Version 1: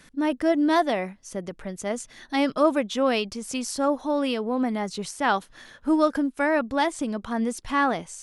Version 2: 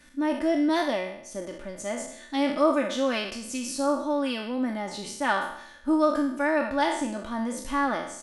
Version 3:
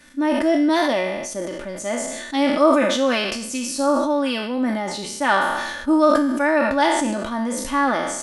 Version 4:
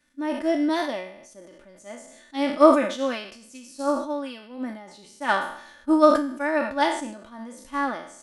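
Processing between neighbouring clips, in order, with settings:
peak hold with a decay on every bin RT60 0.69 s; comb filter 3.4 ms, depth 59%; level −6 dB
low-shelf EQ 91 Hz −7.5 dB; level that may fall only so fast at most 35 dB per second; level +6 dB
expander for the loud parts 2.5 to 1, over −26 dBFS; level +2.5 dB

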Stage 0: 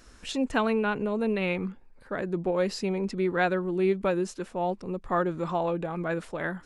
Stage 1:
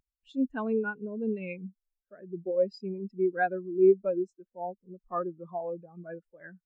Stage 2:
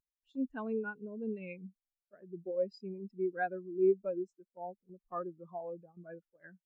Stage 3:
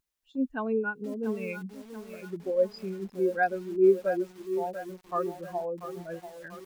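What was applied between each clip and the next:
high-shelf EQ 2,400 Hz +9.5 dB; every bin expanded away from the loudest bin 2.5 to 1; level −2.5 dB
noise gate −50 dBFS, range −8 dB; level −7 dB
dynamic equaliser 240 Hz, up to −3 dB, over −45 dBFS, Q 0.84; feedback echo at a low word length 687 ms, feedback 55%, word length 9 bits, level −10.5 dB; level +9 dB

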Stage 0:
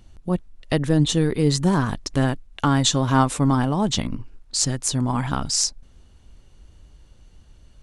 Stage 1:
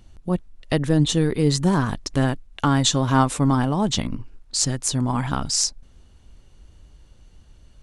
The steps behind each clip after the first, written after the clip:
no processing that can be heard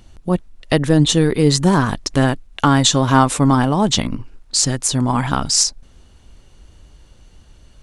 low-shelf EQ 230 Hz −4 dB
boost into a limiter +8 dB
level −1 dB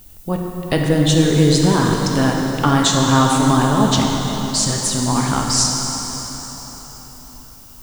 background noise violet −44 dBFS
dense smooth reverb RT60 4.6 s, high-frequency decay 0.85×, DRR −0.5 dB
level −3 dB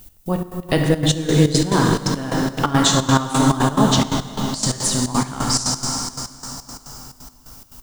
gate pattern "x..xx.x.xxx." 175 BPM −12 dB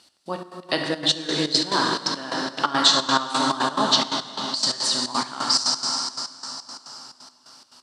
loudspeaker in its box 450–7,600 Hz, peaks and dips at 460 Hz −8 dB, 750 Hz −4 dB, 2,200 Hz −4 dB, 4,400 Hz +9 dB, 6,800 Hz −9 dB

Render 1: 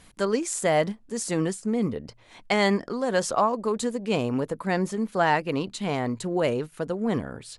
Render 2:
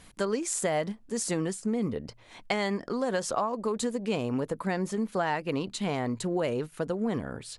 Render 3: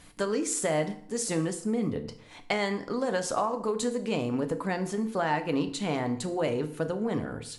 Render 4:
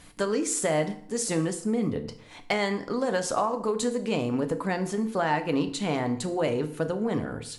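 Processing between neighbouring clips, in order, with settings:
downward compressor 5 to 1, threshold −25 dBFS, peak gain reduction 8.5 dB
feedback delay network reverb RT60 0.62 s, low-frequency decay 1.1×, high-frequency decay 0.85×, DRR 7 dB
gain into a clipping stage and back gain 16 dB; level +2 dB

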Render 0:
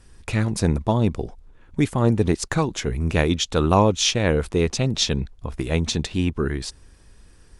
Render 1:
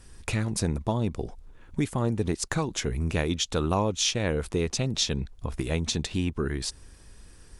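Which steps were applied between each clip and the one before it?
high-shelf EQ 6,100 Hz +5.5 dB
downward compressor 2 to 1, threshold −28 dBFS, peak gain reduction 9.5 dB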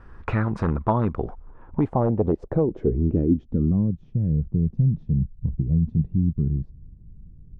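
wave folding −17.5 dBFS
low-pass filter sweep 1,300 Hz → 160 Hz, 0:01.28–0:04.04
level +4.5 dB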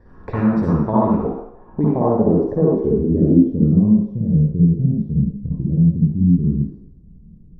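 convolution reverb RT60 0.75 s, pre-delay 51 ms, DRR −6.5 dB
level −13.5 dB

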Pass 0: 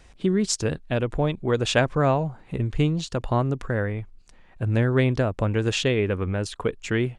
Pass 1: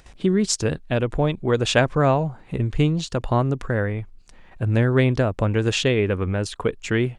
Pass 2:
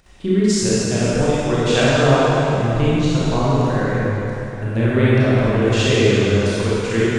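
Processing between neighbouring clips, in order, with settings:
noise gate with hold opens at −43 dBFS; upward compression, threshold −42 dBFS; level +2.5 dB
convolution reverb RT60 3.3 s, pre-delay 22 ms, DRR −9.5 dB; level −5 dB

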